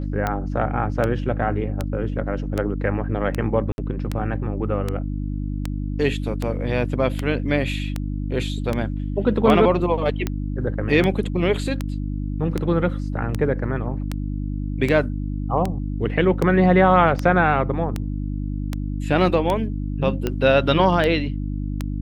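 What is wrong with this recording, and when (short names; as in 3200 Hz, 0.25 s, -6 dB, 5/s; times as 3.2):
hum 50 Hz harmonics 6 -26 dBFS
tick 78 rpm -10 dBFS
3.72–3.78 gap 61 ms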